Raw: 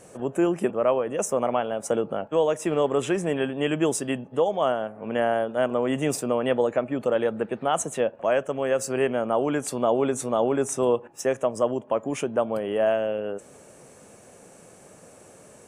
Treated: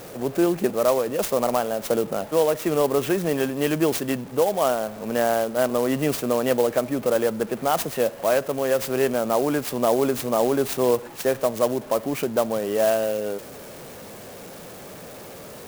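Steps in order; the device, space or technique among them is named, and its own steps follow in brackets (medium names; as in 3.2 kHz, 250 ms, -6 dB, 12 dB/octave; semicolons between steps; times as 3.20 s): early CD player with a faulty converter (jump at every zero crossing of -38.5 dBFS; sampling jitter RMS 0.044 ms); trim +1.5 dB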